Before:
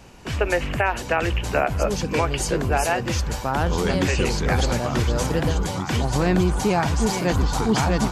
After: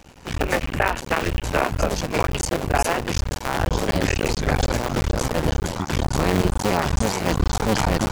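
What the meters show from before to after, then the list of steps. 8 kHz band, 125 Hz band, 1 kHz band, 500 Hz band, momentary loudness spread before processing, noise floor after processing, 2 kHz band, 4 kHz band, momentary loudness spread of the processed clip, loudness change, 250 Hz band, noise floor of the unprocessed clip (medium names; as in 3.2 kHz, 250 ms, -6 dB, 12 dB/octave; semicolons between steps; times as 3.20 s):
+0.5 dB, -1.0 dB, 0.0 dB, -0.5 dB, 4 LU, -35 dBFS, 0.0 dB, +0.5 dB, 4 LU, -0.5 dB, -1.5 dB, -32 dBFS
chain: cycle switcher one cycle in 2, muted; trim +2.5 dB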